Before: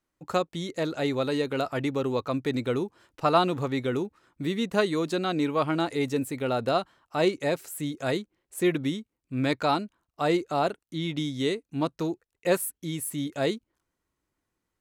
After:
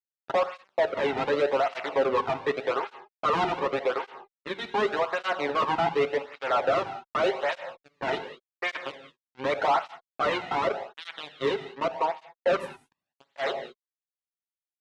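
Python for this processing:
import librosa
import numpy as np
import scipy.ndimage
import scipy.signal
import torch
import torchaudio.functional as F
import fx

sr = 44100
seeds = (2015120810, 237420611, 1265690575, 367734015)

y = fx.wiener(x, sr, points=25)
y = fx.env_lowpass(y, sr, base_hz=990.0, full_db=-22.0)
y = scipy.signal.sosfilt(scipy.signal.butter(4, 690.0, 'highpass', fs=sr, output='sos'), y)
y = fx.high_shelf(y, sr, hz=5800.0, db=-11.0)
y = y + 0.88 * np.pad(y, (int(7.4 * sr / 1000.0), 0))[:len(y)]
y = fx.fuzz(y, sr, gain_db=45.0, gate_db=-47.0)
y = fx.spacing_loss(y, sr, db_at_10k=32)
y = fx.rev_gated(y, sr, seeds[0], gate_ms=220, shape='flat', drr_db=9.0)
y = fx.flanger_cancel(y, sr, hz=0.86, depth_ms=1.9)
y = F.gain(torch.from_numpy(y), -3.0).numpy()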